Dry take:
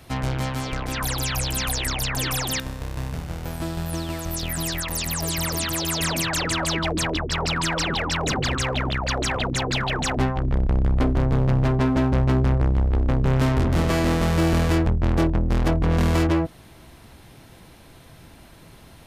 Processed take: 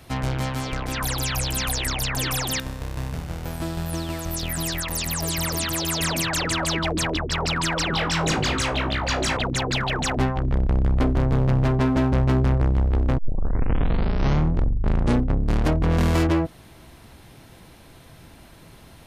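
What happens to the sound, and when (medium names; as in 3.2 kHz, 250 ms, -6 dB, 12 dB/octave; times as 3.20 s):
7.91–9.37 s: flutter echo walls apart 3.2 m, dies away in 0.2 s
13.18 s: tape start 2.63 s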